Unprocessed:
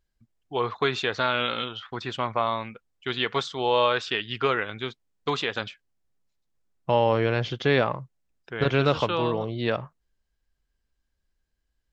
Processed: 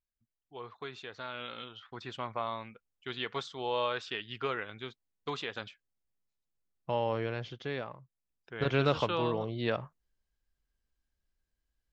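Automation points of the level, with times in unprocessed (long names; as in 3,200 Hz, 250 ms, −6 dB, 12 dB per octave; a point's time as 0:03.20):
0:01.11 −18 dB
0:02.05 −10 dB
0:07.18 −10 dB
0:07.95 −17.5 dB
0:08.76 −5.5 dB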